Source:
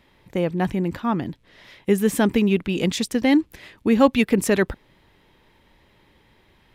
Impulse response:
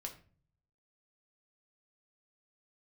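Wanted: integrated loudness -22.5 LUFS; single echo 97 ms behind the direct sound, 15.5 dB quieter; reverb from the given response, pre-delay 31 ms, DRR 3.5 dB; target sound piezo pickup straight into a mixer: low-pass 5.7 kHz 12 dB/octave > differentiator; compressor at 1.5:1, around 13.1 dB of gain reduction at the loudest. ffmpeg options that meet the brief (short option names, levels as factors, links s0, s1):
-filter_complex "[0:a]acompressor=threshold=0.00447:ratio=1.5,aecho=1:1:97:0.168,asplit=2[s0][s1];[1:a]atrim=start_sample=2205,adelay=31[s2];[s1][s2]afir=irnorm=-1:irlink=0,volume=0.944[s3];[s0][s3]amix=inputs=2:normalize=0,lowpass=5700,aderivative,volume=20"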